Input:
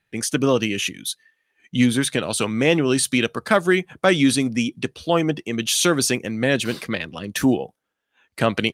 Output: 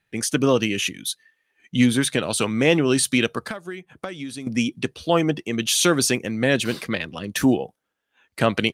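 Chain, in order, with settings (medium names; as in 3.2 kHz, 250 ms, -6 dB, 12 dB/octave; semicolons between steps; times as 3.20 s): 3.39–4.47 s: compression 16:1, threshold -29 dBFS, peak gain reduction 19 dB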